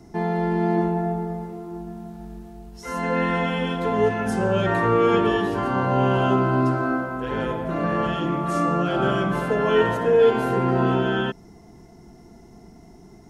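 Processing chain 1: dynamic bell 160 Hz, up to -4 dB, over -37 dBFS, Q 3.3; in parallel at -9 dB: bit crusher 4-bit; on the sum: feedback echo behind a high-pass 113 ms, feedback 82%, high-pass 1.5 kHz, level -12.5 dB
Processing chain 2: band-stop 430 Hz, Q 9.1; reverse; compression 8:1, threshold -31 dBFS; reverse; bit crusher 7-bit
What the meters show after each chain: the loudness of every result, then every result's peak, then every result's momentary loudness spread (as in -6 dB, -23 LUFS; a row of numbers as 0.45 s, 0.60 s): -19.5 LUFS, -34.0 LUFS; -4.0 dBFS, -22.0 dBFS; 17 LU, 14 LU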